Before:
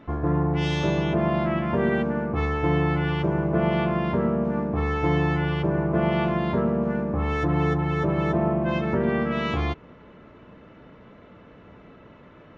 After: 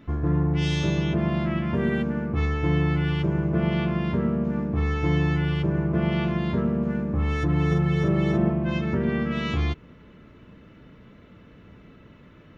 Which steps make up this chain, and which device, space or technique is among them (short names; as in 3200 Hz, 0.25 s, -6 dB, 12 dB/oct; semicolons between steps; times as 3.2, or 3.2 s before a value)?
smiley-face EQ (low shelf 190 Hz +3.5 dB; bell 760 Hz -8.5 dB 1.8 oct; high shelf 5700 Hz +6.5 dB); 7.67–8.5 doubler 46 ms -3 dB